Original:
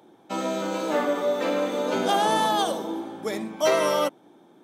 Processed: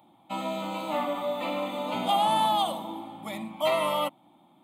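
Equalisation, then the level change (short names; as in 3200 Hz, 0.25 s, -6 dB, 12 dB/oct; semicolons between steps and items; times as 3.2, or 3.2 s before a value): fixed phaser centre 1600 Hz, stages 6; 0.0 dB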